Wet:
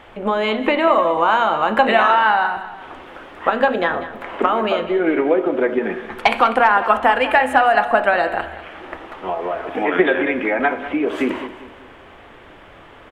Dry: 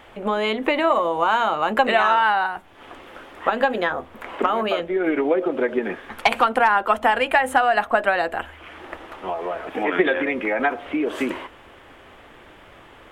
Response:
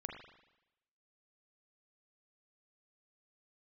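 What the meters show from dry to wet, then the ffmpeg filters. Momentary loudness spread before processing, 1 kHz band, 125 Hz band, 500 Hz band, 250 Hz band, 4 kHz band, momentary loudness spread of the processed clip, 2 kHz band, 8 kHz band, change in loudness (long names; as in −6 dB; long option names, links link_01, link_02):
14 LU, +3.5 dB, +4.0 dB, +4.0 dB, +4.0 dB, +2.0 dB, 16 LU, +3.0 dB, can't be measured, +3.5 dB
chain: -filter_complex "[0:a]highshelf=frequency=5900:gain=-9.5,aecho=1:1:195|390|585|780:0.2|0.0818|0.0335|0.0138,asplit=2[link_01][link_02];[1:a]atrim=start_sample=2205,asetrate=61740,aresample=44100[link_03];[link_02][link_03]afir=irnorm=-1:irlink=0,volume=0.5dB[link_04];[link_01][link_04]amix=inputs=2:normalize=0"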